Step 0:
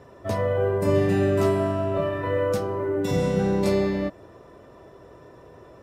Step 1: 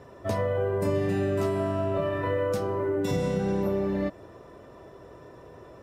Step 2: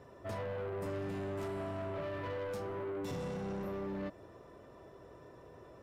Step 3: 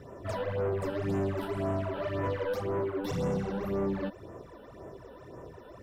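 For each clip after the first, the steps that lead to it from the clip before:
spectral replace 3.48–4.04 s, 1.6–11 kHz both; compression, threshold -23 dBFS, peak gain reduction 6.5 dB
saturation -29 dBFS, distortion -10 dB; trim -7 dB
phase shifter stages 12, 1.9 Hz, lowest notch 110–4400 Hz; trim +9 dB

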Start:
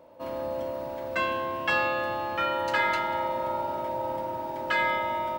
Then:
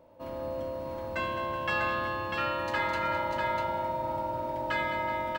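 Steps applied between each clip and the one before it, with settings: bass shelf 150 Hz +11 dB; on a send: multi-tap echo 76/210/374/646 ms -17/-10/-13.5/-4 dB; on the sum: trim -5.5 dB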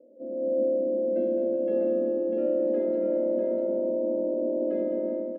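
elliptic band-pass 220–550 Hz, stop band 40 dB; level rider gain up to 7 dB; trim +5.5 dB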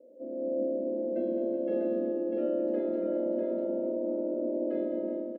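bass shelf 160 Hz -10.5 dB; on a send: early reflections 37 ms -9.5 dB, 47 ms -9 dB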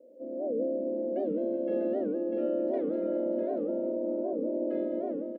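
warped record 78 rpm, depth 250 cents

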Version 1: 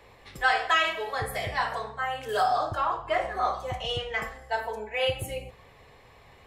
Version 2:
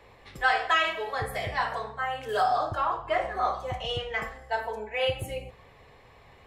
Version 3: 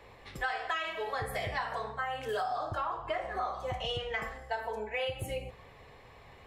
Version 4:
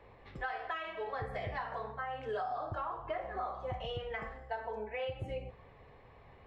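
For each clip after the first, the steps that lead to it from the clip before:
treble shelf 5 kHz -5.5 dB
compression 6:1, threshold -31 dBFS, peak gain reduction 12 dB
tape spacing loss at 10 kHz 27 dB; trim -1.5 dB

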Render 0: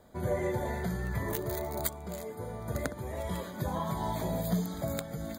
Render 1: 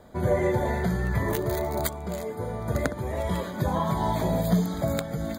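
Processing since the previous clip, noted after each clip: treble shelf 6.1 kHz -7 dB; trim +7.5 dB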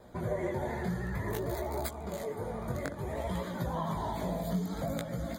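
compression 3:1, threshold -29 dBFS, peak gain reduction 9 dB; vibrato 13 Hz 81 cents; chorus 0.57 Hz, delay 16.5 ms, depth 6 ms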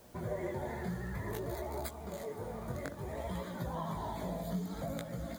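word length cut 10-bit, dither triangular; trim -4.5 dB

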